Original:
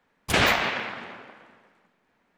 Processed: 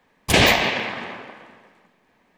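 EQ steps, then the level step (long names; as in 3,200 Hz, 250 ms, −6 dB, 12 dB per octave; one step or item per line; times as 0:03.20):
notch filter 1,400 Hz, Q 7.3
dynamic equaliser 1,300 Hz, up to −7 dB, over −38 dBFS, Q 1.5
+7.5 dB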